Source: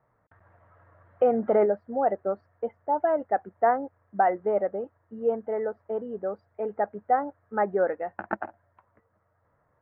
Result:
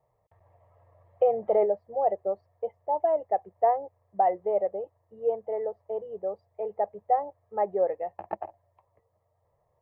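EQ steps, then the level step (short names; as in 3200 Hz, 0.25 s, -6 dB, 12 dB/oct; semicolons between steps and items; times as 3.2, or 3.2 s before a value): fixed phaser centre 610 Hz, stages 4; 0.0 dB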